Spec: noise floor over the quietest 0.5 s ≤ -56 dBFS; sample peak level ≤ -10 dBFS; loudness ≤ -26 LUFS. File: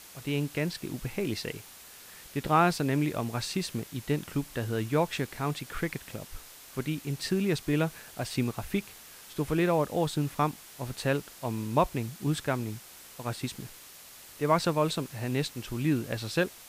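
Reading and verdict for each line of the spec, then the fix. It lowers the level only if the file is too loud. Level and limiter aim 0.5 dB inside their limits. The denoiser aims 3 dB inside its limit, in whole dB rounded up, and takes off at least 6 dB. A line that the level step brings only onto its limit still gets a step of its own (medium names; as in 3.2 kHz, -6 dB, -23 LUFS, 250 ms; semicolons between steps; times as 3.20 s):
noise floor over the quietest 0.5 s -50 dBFS: fail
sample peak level -12.0 dBFS: pass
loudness -31.0 LUFS: pass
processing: noise reduction 9 dB, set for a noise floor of -50 dBFS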